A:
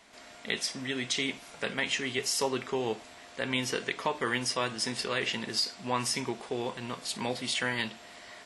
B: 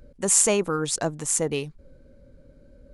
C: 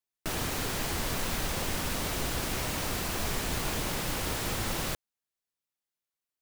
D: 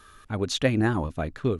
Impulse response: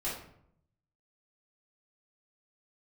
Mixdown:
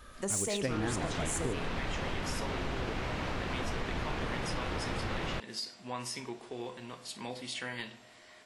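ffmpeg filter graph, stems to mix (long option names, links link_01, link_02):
-filter_complex "[0:a]volume=-9.5dB,asplit=2[link_01][link_02];[link_02]volume=-11.5dB[link_03];[1:a]volume=14dB,asoftclip=hard,volume=-14dB,volume=-7.5dB,asplit=3[link_04][link_05][link_06];[link_05]volume=-12dB[link_07];[link_06]volume=-13.5dB[link_08];[2:a]lowpass=2800,adelay=450,volume=2.5dB[link_09];[3:a]volume=-3.5dB[link_10];[4:a]atrim=start_sample=2205[link_11];[link_03][link_07]amix=inputs=2:normalize=0[link_12];[link_12][link_11]afir=irnorm=-1:irlink=0[link_13];[link_08]aecho=0:1:150:1[link_14];[link_01][link_04][link_09][link_10][link_13][link_14]amix=inputs=6:normalize=0,acompressor=threshold=-33dB:ratio=2.5"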